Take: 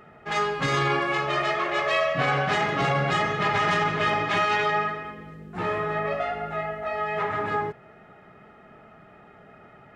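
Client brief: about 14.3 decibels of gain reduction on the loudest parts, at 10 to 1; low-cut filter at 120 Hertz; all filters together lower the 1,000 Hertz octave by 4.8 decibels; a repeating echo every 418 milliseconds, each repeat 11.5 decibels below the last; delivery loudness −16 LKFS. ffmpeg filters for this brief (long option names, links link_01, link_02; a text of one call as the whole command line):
ffmpeg -i in.wav -af "highpass=120,equalizer=frequency=1000:width_type=o:gain=-6.5,acompressor=threshold=-37dB:ratio=10,aecho=1:1:418|836|1254:0.266|0.0718|0.0194,volume=23.5dB" out.wav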